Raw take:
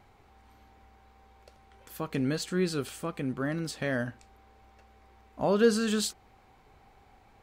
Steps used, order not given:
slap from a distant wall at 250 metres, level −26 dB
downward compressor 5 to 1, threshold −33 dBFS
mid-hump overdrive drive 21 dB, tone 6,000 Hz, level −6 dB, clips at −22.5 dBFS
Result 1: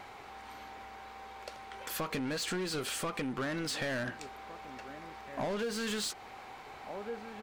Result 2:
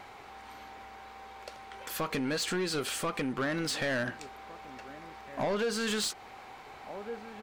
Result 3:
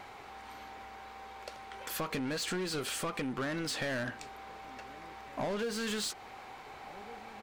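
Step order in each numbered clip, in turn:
slap from a distant wall, then mid-hump overdrive, then downward compressor
slap from a distant wall, then downward compressor, then mid-hump overdrive
mid-hump overdrive, then slap from a distant wall, then downward compressor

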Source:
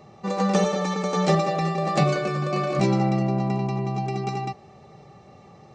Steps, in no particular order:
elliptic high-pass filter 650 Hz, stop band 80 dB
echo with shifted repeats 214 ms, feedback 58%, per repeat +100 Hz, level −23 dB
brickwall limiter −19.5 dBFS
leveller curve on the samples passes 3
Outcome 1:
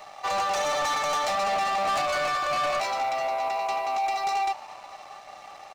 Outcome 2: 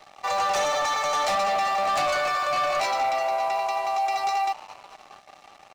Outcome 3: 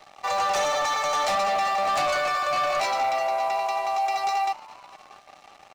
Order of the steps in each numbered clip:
brickwall limiter, then elliptic high-pass filter, then leveller curve on the samples, then echo with shifted repeats
elliptic high-pass filter, then echo with shifted repeats, then leveller curve on the samples, then brickwall limiter
elliptic high-pass filter, then leveller curve on the samples, then brickwall limiter, then echo with shifted repeats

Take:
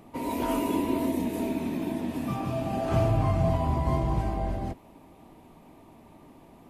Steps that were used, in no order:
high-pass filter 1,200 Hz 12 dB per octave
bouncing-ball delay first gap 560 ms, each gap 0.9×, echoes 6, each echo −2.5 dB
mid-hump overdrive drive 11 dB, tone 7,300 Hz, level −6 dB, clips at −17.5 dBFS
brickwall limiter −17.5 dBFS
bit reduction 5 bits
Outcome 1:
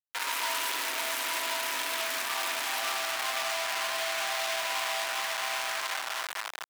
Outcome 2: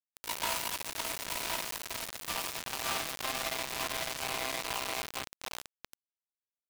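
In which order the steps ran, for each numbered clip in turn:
bouncing-ball delay, then brickwall limiter, then bit reduction, then mid-hump overdrive, then high-pass filter
bouncing-ball delay, then mid-hump overdrive, then brickwall limiter, then high-pass filter, then bit reduction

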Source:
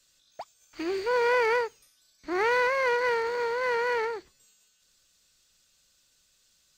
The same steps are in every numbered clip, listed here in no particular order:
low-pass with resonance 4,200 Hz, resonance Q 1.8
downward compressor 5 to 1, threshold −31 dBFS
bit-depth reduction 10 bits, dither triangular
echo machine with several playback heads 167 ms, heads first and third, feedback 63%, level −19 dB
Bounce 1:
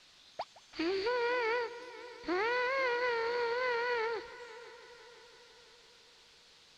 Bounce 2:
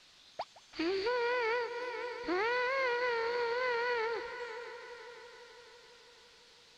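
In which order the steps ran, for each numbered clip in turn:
downward compressor, then echo machine with several playback heads, then bit-depth reduction, then low-pass with resonance
echo machine with several playback heads, then downward compressor, then bit-depth reduction, then low-pass with resonance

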